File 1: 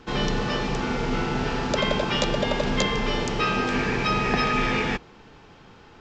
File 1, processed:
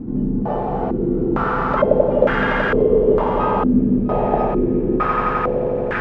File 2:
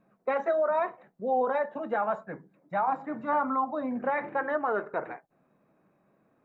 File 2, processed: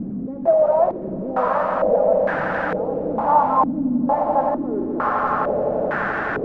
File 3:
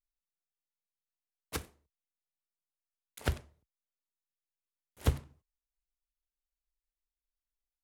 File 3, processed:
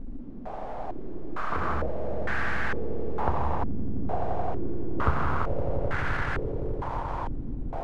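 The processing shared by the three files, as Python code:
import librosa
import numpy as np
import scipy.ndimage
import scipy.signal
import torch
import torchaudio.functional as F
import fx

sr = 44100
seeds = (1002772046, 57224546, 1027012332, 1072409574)

y = fx.delta_mod(x, sr, bps=64000, step_db=-26.5)
y = fx.echo_swell(y, sr, ms=86, loudest=8, wet_db=-10.5)
y = fx.filter_held_lowpass(y, sr, hz=2.2, low_hz=260.0, high_hz=1600.0)
y = y * 10.0 ** (1.0 / 20.0)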